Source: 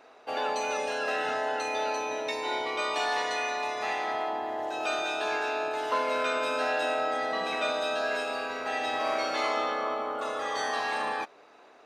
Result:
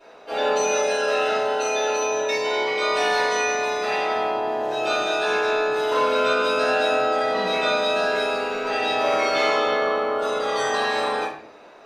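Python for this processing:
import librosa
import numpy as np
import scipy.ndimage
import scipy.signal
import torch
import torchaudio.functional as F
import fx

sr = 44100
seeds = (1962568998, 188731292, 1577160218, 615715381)

y = fx.low_shelf(x, sr, hz=220.0, db=-8.0, at=(0.67, 2.85))
y = fx.room_shoebox(y, sr, seeds[0], volume_m3=64.0, walls='mixed', distance_m=3.1)
y = y * 10.0 ** (-5.0 / 20.0)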